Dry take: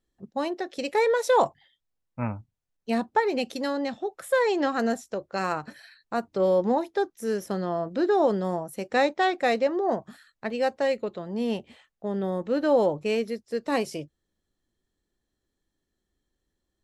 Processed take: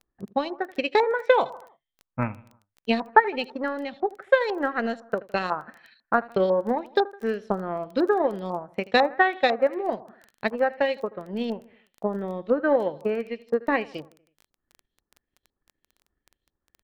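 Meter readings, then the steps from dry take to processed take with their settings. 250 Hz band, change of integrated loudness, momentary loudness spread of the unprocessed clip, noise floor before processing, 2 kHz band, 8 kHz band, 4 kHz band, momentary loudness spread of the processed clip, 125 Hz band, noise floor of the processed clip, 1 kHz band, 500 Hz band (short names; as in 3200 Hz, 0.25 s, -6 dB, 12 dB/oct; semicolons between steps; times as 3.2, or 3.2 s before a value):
-1.0 dB, +1.0 dB, 11 LU, -81 dBFS, +5.0 dB, under -10 dB, +2.0 dB, 11 LU, -1.0 dB, under -85 dBFS, +2.5 dB, +0.5 dB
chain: transient shaper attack +10 dB, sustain -6 dB; on a send: feedback echo 80 ms, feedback 51%, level -20 dB; on the sum: LFO low-pass saw up 2 Hz 980–4300 Hz; crackle 12/s -32 dBFS; gain -4 dB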